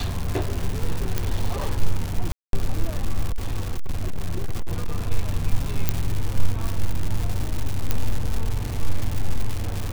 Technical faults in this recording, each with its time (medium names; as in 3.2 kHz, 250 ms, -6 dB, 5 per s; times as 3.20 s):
crackle 320 per s -24 dBFS
1.18 s: pop
2.32–2.53 s: dropout 212 ms
3.32–5.11 s: clipped -18.5 dBFS
5.89 s: pop -5 dBFS
7.91 s: pop -6 dBFS